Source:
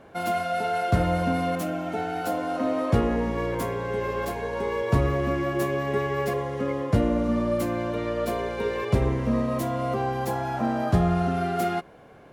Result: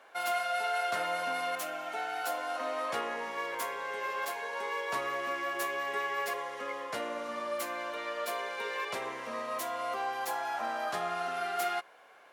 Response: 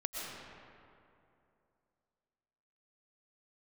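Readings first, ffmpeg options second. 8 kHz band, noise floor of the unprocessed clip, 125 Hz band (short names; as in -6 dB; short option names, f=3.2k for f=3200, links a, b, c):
0.0 dB, -49 dBFS, -33.5 dB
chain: -af "highpass=960"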